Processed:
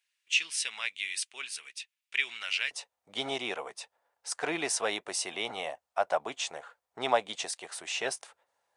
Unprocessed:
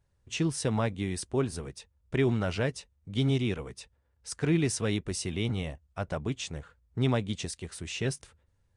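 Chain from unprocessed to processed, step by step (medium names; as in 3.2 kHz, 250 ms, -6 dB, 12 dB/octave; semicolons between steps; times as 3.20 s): resonant high-pass 2.5 kHz, resonance Q 2.8, from 2.71 s 730 Hz; trim +3 dB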